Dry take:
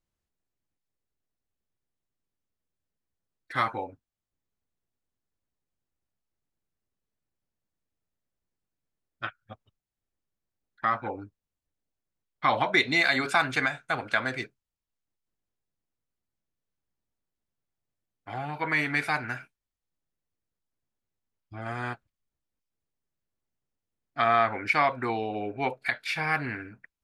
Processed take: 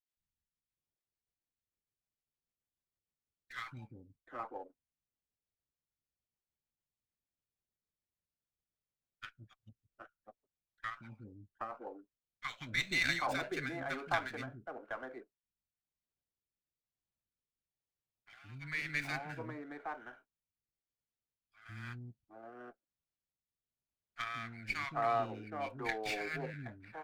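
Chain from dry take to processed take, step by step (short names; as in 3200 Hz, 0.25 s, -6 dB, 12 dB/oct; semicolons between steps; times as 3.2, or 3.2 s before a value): three bands offset in time highs, lows, mids 0.17/0.77 s, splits 280/1300 Hz; rotary speaker horn 6.7 Hz, later 1 Hz, at 11.73; running maximum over 3 samples; gain -6.5 dB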